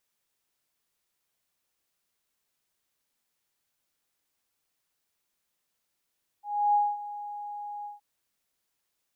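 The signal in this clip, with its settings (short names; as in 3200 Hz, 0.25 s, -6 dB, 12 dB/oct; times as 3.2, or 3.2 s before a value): ADSR sine 826 Hz, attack 0.311 s, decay 0.227 s, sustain -16 dB, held 1.42 s, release 0.151 s -19 dBFS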